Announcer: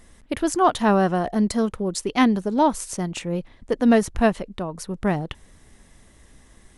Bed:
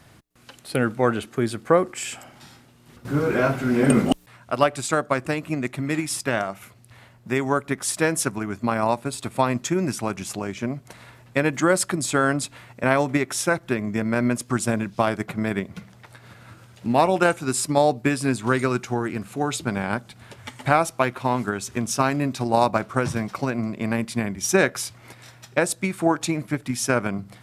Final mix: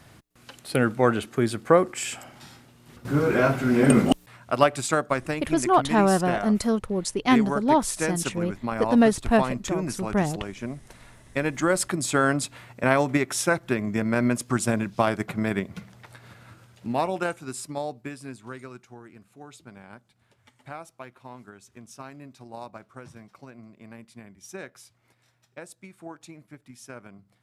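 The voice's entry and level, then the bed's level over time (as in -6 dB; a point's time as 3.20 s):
5.10 s, -1.5 dB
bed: 4.76 s 0 dB
5.69 s -6 dB
11.17 s -6 dB
12.21 s -1 dB
16.14 s -1 dB
18.88 s -20.5 dB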